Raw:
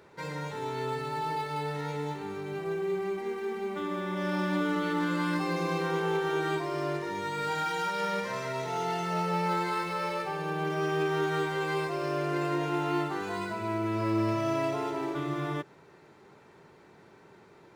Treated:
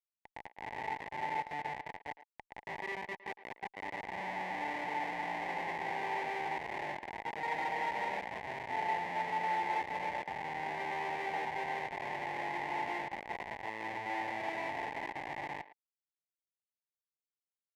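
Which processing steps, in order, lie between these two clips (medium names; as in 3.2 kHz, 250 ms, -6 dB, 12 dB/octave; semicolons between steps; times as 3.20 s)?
Schmitt trigger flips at -28 dBFS; two resonant band-passes 1.3 kHz, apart 1.2 oct; speakerphone echo 110 ms, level -15 dB; trim +8.5 dB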